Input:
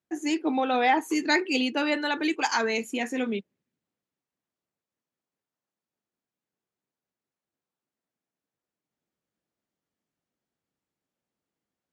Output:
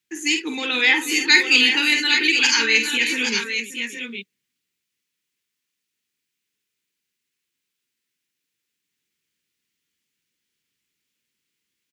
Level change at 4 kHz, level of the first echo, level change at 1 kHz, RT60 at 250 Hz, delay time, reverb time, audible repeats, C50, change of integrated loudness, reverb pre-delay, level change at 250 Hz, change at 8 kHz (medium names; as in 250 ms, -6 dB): +15.5 dB, -6.5 dB, -6.0 dB, no reverb, 48 ms, no reverb, 4, no reverb, +9.5 dB, no reverb, -0.5 dB, +14.0 dB